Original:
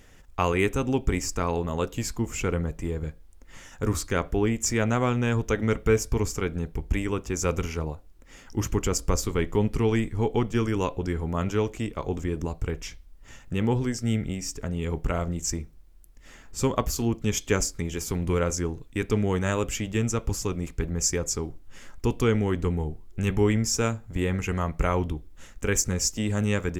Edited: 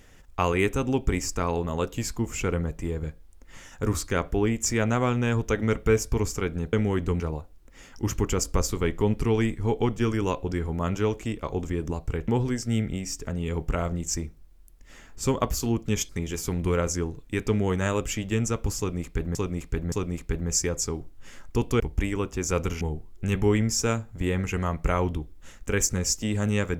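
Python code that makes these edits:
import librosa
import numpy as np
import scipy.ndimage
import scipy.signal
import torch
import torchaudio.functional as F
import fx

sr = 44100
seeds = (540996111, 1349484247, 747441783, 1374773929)

y = fx.edit(x, sr, fx.swap(start_s=6.73, length_s=1.01, other_s=22.29, other_length_s=0.47),
    fx.cut(start_s=12.82, length_s=0.82),
    fx.cut(start_s=17.45, length_s=0.27),
    fx.repeat(start_s=20.41, length_s=0.57, count=3), tone=tone)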